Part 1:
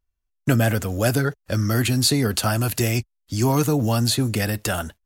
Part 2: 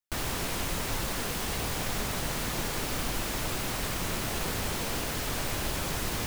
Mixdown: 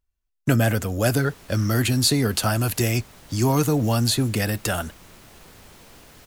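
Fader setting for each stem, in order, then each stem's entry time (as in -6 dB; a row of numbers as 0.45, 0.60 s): -0.5, -16.0 dB; 0.00, 1.00 s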